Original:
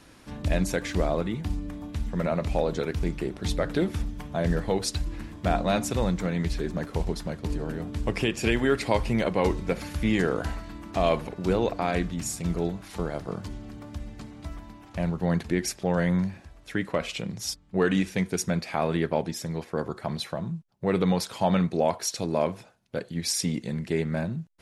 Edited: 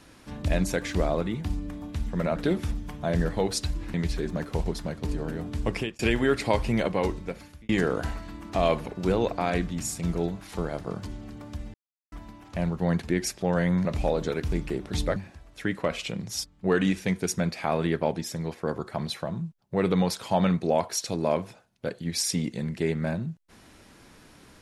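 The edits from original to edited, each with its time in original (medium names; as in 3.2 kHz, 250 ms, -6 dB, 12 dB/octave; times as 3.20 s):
2.36–3.67 s: move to 16.26 s
5.25–6.35 s: delete
8.14–8.40 s: fade out
9.22–10.10 s: fade out
14.15–14.53 s: mute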